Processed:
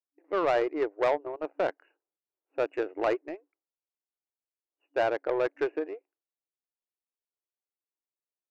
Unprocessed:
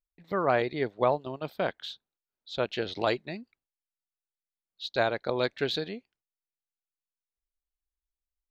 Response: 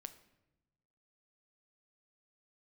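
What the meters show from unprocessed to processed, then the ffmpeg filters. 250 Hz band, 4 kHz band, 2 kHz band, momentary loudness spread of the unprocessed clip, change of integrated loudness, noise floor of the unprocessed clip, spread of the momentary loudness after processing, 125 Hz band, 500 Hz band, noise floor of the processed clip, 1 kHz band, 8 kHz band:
-0.5 dB, -12.0 dB, -2.5 dB, 15 LU, 0.0 dB, under -85 dBFS, 12 LU, -14.5 dB, +1.0 dB, under -85 dBFS, -1.0 dB, n/a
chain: -af "aeval=exprs='0.282*sin(PI/2*2*val(0)/0.282)':c=same,afftfilt=real='re*between(b*sr/4096,280,2900)':imag='im*between(b*sr/4096,280,2900)':win_size=4096:overlap=0.75,adynamicsmooth=sensitivity=0.5:basefreq=910,volume=-6.5dB"

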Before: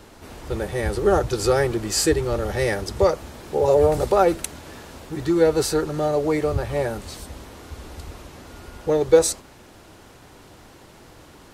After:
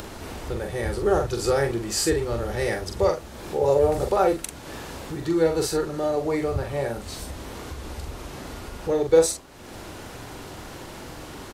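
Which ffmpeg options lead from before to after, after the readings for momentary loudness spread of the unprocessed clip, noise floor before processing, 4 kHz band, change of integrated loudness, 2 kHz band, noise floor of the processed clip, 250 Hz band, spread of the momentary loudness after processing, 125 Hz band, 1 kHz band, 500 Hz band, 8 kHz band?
22 LU, -48 dBFS, -2.5 dB, -3.0 dB, -2.5 dB, -41 dBFS, -2.5 dB, 18 LU, -3.0 dB, -2.5 dB, -2.5 dB, -2.5 dB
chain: -filter_complex "[0:a]acompressor=mode=upward:threshold=-24dB:ratio=2.5,asplit=2[a][b];[b]adelay=43,volume=-5.5dB[c];[a][c]amix=inputs=2:normalize=0,volume=-4dB"

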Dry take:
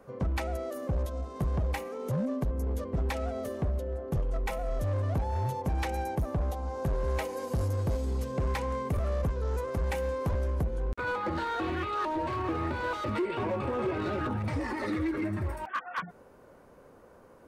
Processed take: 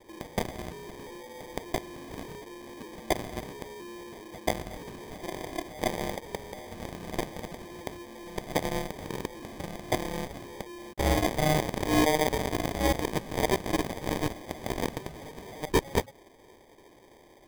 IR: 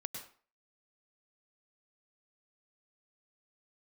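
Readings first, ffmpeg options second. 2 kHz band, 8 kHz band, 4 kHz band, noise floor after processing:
+2.0 dB, +11.5 dB, +9.0 dB, -56 dBFS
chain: -af "highpass=f=550:t=q:w=0.5412,highpass=f=550:t=q:w=1.307,lowpass=f=3k:t=q:w=0.5176,lowpass=f=3k:t=q:w=0.7071,lowpass=f=3k:t=q:w=1.932,afreqshift=-170,acrusher=samples=32:mix=1:aa=0.000001,aeval=exprs='0.075*(cos(1*acos(clip(val(0)/0.075,-1,1)))-cos(1*PI/2))+0.0168*(cos(7*acos(clip(val(0)/0.075,-1,1)))-cos(7*PI/2))':c=same,volume=9dB"

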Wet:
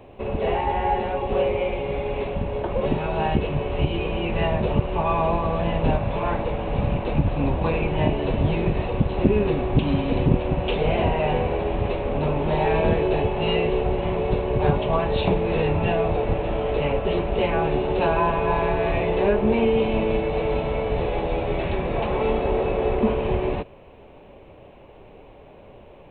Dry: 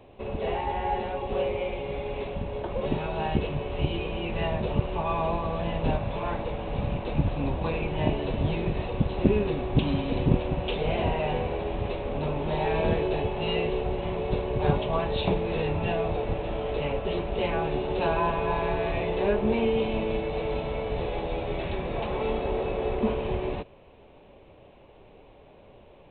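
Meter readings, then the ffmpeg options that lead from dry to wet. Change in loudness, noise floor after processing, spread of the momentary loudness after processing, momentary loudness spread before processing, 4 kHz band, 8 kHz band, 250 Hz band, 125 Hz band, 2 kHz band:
+5.5 dB, -47 dBFS, 5 LU, 6 LU, +3.0 dB, n/a, +5.0 dB, +5.0 dB, +5.0 dB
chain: -filter_complex "[0:a]equalizer=f=3.7k:t=o:w=0.5:g=-5.5,asplit=2[a][b];[b]alimiter=limit=-17.5dB:level=0:latency=1:release=213,volume=0dB[c];[a][c]amix=inputs=2:normalize=0"

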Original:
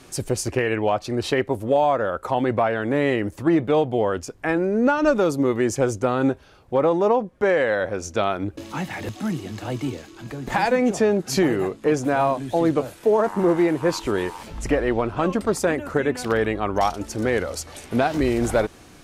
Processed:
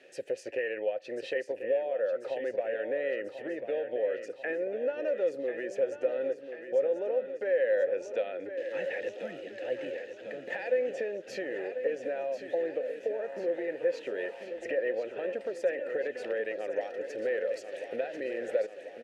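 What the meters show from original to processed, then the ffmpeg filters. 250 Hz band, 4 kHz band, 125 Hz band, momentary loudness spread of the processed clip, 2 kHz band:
-21.0 dB, -16.0 dB, under -30 dB, 8 LU, -10.5 dB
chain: -filter_complex "[0:a]asplit=2[a][b];[b]alimiter=limit=-15dB:level=0:latency=1,volume=-0.5dB[c];[a][c]amix=inputs=2:normalize=0,highpass=f=300:p=1,acompressor=threshold=-20dB:ratio=6,asplit=3[d][e][f];[d]bandpass=f=530:t=q:w=8,volume=0dB[g];[e]bandpass=f=1.84k:t=q:w=8,volume=-6dB[h];[f]bandpass=f=2.48k:t=q:w=8,volume=-9dB[i];[g][h][i]amix=inputs=3:normalize=0,aecho=1:1:1041|2082|3123|4164|5205|6246|7287:0.335|0.198|0.117|0.0688|0.0406|0.0239|0.0141"

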